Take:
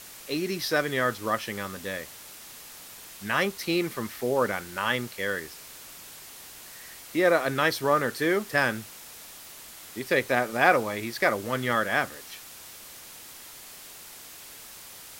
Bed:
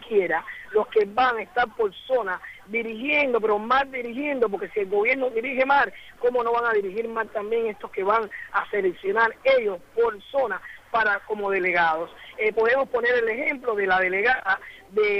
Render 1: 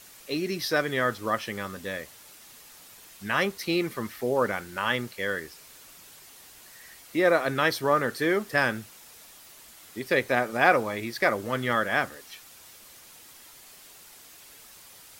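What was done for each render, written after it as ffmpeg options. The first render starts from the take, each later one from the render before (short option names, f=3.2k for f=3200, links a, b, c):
-af "afftdn=nr=6:nf=-46"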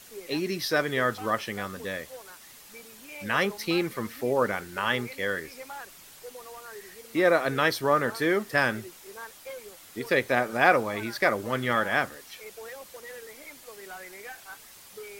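-filter_complex "[1:a]volume=-22dB[a];[0:a][a]amix=inputs=2:normalize=0"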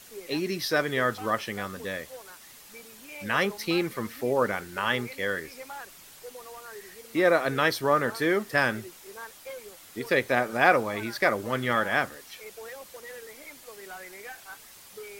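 -af anull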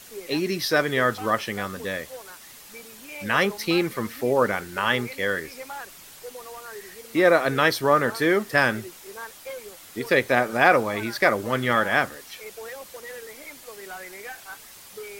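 -af "volume=4dB,alimiter=limit=-3dB:level=0:latency=1"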